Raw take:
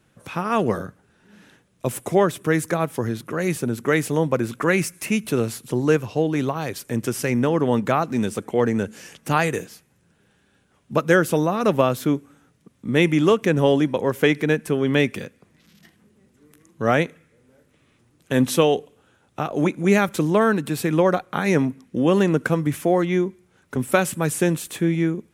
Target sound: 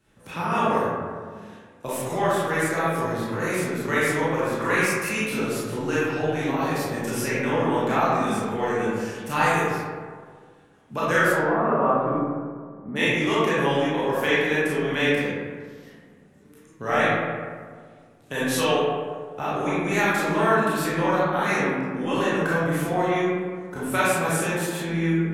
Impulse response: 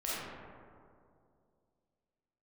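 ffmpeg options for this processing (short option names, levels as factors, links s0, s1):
-filter_complex "[0:a]acrossover=split=700[s0][s1];[s0]acompressor=threshold=0.0447:ratio=6[s2];[s2][s1]amix=inputs=2:normalize=0,asplit=3[s3][s4][s5];[s3]afade=t=out:st=11.28:d=0.02[s6];[s4]lowpass=f=1600:w=0.5412,lowpass=f=1600:w=1.3066,afade=t=in:st=11.28:d=0.02,afade=t=out:st=12.95:d=0.02[s7];[s5]afade=t=in:st=12.95:d=0.02[s8];[s6][s7][s8]amix=inputs=3:normalize=0[s9];[1:a]atrim=start_sample=2205,asetrate=61740,aresample=44100[s10];[s9][s10]afir=irnorm=-1:irlink=0"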